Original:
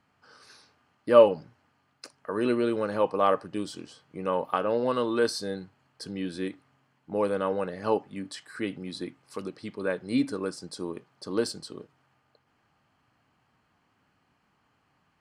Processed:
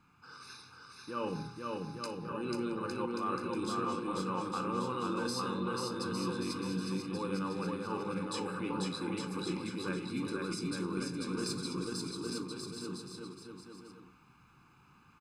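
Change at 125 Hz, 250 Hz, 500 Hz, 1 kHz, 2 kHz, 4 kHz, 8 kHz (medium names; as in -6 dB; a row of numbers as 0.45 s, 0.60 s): +1.5 dB, -3.5 dB, -12.5 dB, -5.5 dB, -4.5 dB, -1.5 dB, +0.5 dB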